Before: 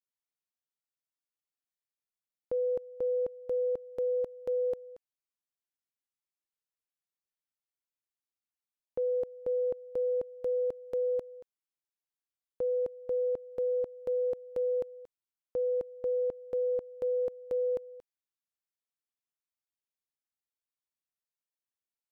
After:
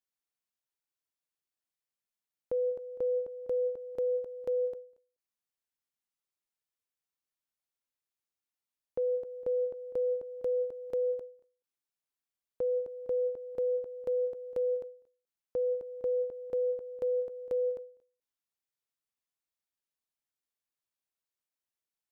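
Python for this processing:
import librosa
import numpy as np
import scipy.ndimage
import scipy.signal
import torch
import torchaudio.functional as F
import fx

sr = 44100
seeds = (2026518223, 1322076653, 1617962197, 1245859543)

p1 = x + fx.echo_single(x, sr, ms=199, db=-19.5, dry=0)
y = fx.end_taper(p1, sr, db_per_s=130.0)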